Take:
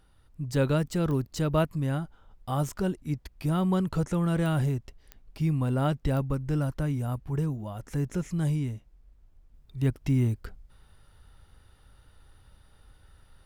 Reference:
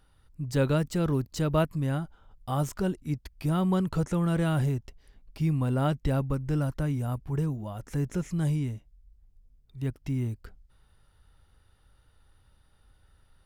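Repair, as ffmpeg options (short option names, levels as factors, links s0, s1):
-af "adeclick=t=4,agate=range=0.0891:threshold=0.00316,asetnsamples=n=441:p=0,asendcmd='9.54 volume volume -5.5dB',volume=1"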